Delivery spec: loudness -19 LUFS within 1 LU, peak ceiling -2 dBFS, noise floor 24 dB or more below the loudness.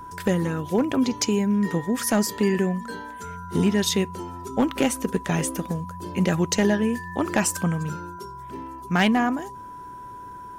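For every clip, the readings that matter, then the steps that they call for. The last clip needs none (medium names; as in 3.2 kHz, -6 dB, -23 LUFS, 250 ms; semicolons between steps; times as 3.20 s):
clipped samples 0.2%; clipping level -12.5 dBFS; steady tone 990 Hz; tone level -37 dBFS; loudness -24.0 LUFS; peak level -12.5 dBFS; loudness target -19.0 LUFS
-> clip repair -12.5 dBFS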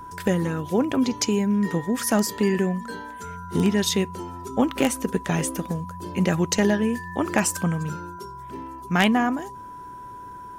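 clipped samples 0.0%; steady tone 990 Hz; tone level -37 dBFS
-> band-stop 990 Hz, Q 30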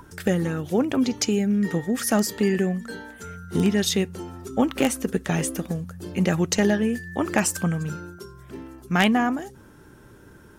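steady tone not found; loudness -24.0 LUFS; peak level -4.0 dBFS; loudness target -19.0 LUFS
-> trim +5 dB; peak limiter -2 dBFS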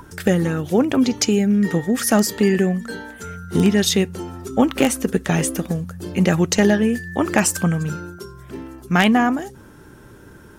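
loudness -19.0 LUFS; peak level -2.0 dBFS; noise floor -44 dBFS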